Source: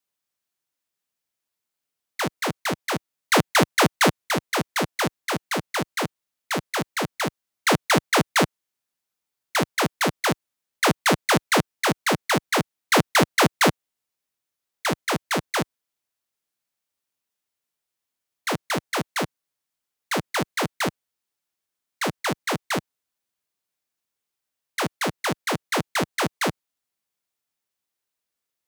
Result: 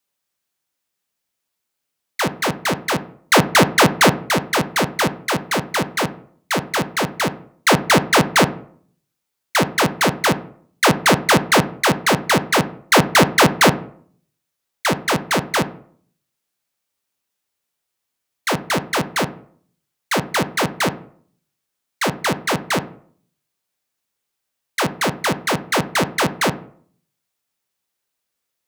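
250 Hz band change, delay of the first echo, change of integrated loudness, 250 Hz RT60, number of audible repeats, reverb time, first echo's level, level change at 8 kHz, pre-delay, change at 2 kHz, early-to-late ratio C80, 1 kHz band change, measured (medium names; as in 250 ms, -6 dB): +6.0 dB, no echo, +5.5 dB, 0.65 s, no echo, 0.55 s, no echo, +5.5 dB, 3 ms, +6.0 dB, 20.0 dB, +6.0 dB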